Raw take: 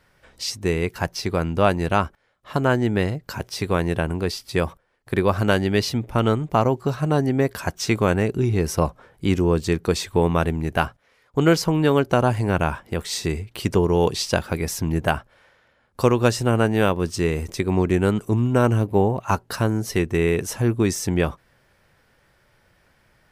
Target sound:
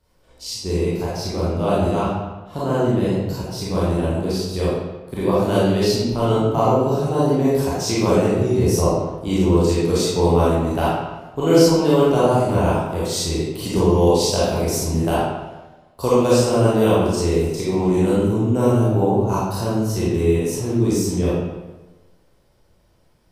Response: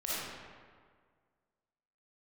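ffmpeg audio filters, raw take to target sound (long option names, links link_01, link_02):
-filter_complex "[0:a]equalizer=frequency=1800:width=1:gain=-14.5,acrossover=split=420[link_01][link_02];[link_02]dynaudnorm=framelen=650:gausssize=17:maxgain=4.5dB[link_03];[link_01][link_03]amix=inputs=2:normalize=0[link_04];[1:a]atrim=start_sample=2205,asetrate=70560,aresample=44100[link_05];[link_04][link_05]afir=irnorm=-1:irlink=0,volume=2dB"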